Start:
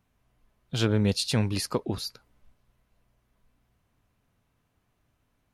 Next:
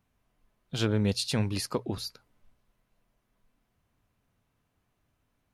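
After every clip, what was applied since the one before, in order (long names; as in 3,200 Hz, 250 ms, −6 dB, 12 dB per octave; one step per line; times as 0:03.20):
mains-hum notches 60/120 Hz
level −2.5 dB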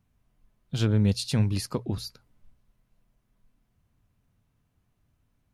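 bass and treble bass +9 dB, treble +2 dB
level −2.5 dB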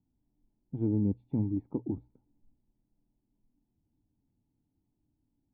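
formant resonators in series u
level +5 dB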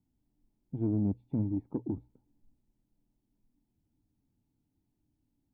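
soft clipping −20 dBFS, distortion −22 dB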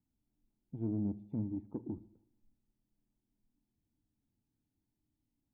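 convolution reverb RT60 0.80 s, pre-delay 5 ms, DRR 15 dB
level −6.5 dB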